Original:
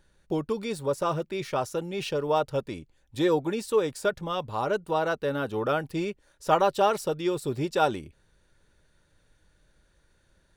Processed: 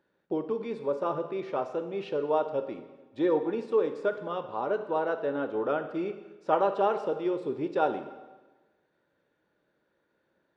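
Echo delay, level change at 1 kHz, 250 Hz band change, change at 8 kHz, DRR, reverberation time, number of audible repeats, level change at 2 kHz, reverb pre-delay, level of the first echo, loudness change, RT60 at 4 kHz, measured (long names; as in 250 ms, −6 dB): no echo audible, −3.0 dB, −2.0 dB, below −20 dB, 8.0 dB, 1.2 s, no echo audible, −5.5 dB, 7 ms, no echo audible, −2.5 dB, 1.1 s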